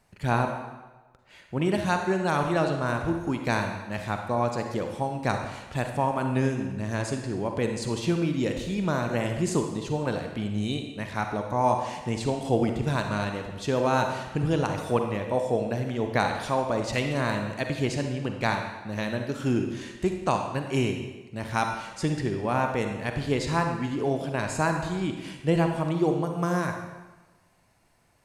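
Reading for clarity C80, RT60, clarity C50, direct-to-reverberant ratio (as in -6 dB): 7.0 dB, 1.2 s, 4.5 dB, 4.0 dB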